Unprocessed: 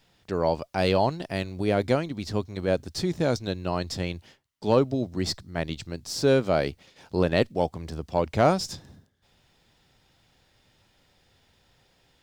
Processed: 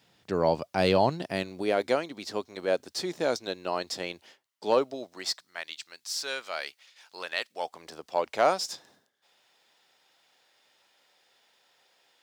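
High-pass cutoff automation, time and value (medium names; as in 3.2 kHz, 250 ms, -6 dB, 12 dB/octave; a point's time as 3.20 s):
1.20 s 120 Hz
1.76 s 400 Hz
4.67 s 400 Hz
5.64 s 1.4 kHz
7.44 s 1.4 kHz
7.86 s 550 Hz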